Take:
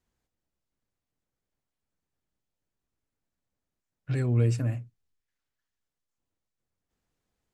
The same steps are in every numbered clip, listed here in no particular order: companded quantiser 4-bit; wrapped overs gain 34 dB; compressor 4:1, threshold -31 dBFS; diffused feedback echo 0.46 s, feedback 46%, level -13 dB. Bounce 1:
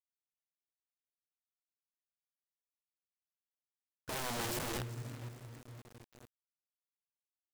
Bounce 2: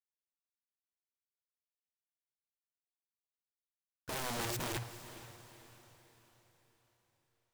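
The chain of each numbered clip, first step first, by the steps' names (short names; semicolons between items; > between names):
compressor > diffused feedback echo > wrapped overs > companded quantiser; compressor > wrapped overs > companded quantiser > diffused feedback echo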